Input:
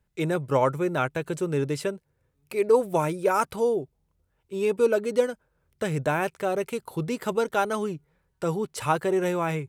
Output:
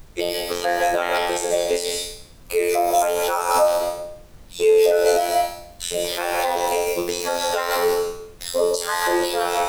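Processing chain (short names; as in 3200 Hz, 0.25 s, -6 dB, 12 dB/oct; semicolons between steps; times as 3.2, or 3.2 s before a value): trilling pitch shifter +5 st, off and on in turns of 0.205 s; LFO high-pass square 3.8 Hz 490–4200 Hz; flutter echo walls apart 4 m, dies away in 0.51 s; robotiser 87.2 Hz; reverb RT60 0.60 s, pre-delay 0.117 s, DRR 4 dB; added noise brown -50 dBFS; high shelf 3500 Hz +9.5 dB; maximiser +12.5 dB; gain -5.5 dB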